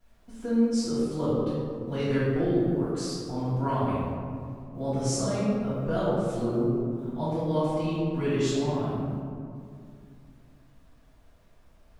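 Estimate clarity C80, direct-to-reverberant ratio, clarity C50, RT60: -0.5 dB, -17.0 dB, -3.0 dB, 2.3 s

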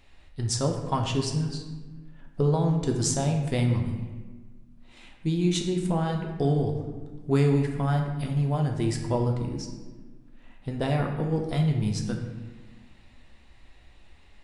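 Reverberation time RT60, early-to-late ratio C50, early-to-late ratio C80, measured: 1.4 s, 5.0 dB, 7.0 dB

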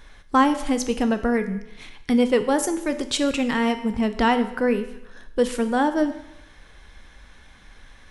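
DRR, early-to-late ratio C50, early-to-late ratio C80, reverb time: 9.0 dB, 12.5 dB, 14.0 dB, 0.85 s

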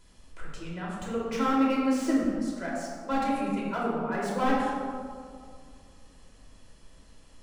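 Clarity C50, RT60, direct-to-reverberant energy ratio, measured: -1.0 dB, 2.3 s, -6.0 dB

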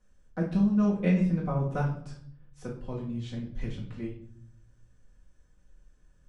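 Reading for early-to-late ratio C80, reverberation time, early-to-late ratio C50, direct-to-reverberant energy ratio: 10.5 dB, 0.60 s, 6.0 dB, -8.5 dB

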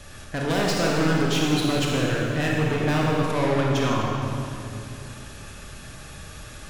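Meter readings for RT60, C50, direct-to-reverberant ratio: 2.6 s, -1.5 dB, -3.0 dB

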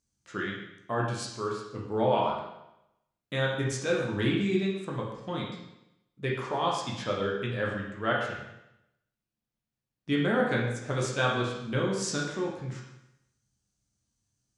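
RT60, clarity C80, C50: 0.85 s, 5.5 dB, 2.5 dB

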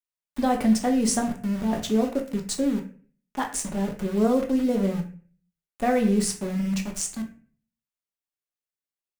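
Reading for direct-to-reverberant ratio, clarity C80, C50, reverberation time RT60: 2.0 dB, 14.5 dB, 10.5 dB, 0.45 s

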